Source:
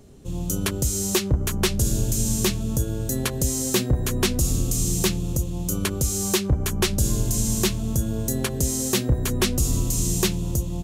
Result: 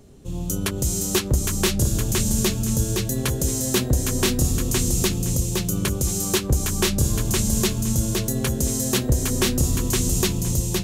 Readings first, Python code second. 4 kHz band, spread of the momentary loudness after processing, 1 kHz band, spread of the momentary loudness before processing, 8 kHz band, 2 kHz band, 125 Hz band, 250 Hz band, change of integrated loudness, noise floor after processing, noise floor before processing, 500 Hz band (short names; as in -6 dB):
+1.5 dB, 3 LU, +1.5 dB, 4 LU, +1.5 dB, +1.5 dB, +1.5 dB, +1.5 dB, +1.5 dB, -29 dBFS, -29 dBFS, +1.5 dB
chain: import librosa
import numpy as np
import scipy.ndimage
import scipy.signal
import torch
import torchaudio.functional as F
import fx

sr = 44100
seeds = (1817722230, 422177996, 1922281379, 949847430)

y = fx.echo_feedback(x, sr, ms=515, feedback_pct=17, wet_db=-3.5)